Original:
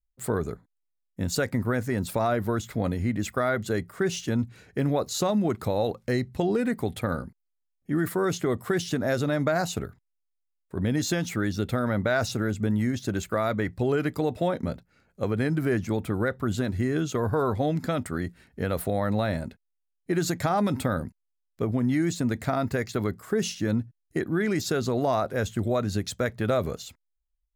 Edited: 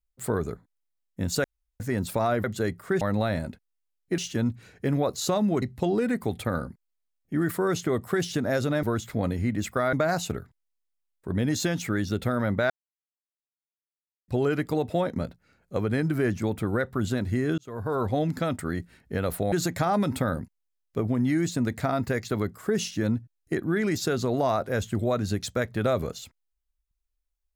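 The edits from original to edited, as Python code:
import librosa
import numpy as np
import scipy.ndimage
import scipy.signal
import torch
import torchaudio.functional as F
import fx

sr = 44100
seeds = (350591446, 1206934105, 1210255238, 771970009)

y = fx.edit(x, sr, fx.room_tone_fill(start_s=1.44, length_s=0.36),
    fx.move(start_s=2.44, length_s=1.1, to_s=9.4),
    fx.cut(start_s=5.55, length_s=0.64),
    fx.silence(start_s=12.17, length_s=1.58),
    fx.fade_in_span(start_s=17.05, length_s=0.49),
    fx.move(start_s=18.99, length_s=1.17, to_s=4.11), tone=tone)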